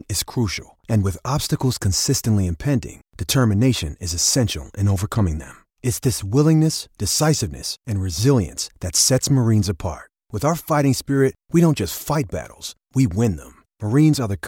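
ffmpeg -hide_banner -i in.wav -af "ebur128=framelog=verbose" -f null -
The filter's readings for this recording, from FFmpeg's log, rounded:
Integrated loudness:
  I:         -20.0 LUFS
  Threshold: -30.3 LUFS
Loudness range:
  LRA:         2.1 LU
  Threshold: -40.2 LUFS
  LRA low:   -21.1 LUFS
  LRA high:  -19.1 LUFS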